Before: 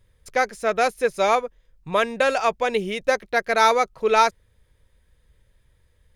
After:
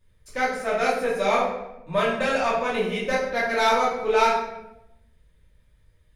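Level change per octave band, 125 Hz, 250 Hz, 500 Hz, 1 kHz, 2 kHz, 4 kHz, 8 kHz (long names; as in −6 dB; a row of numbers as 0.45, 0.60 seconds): +2.5, +1.5, −1.5, −2.5, −1.5, −1.5, −4.0 decibels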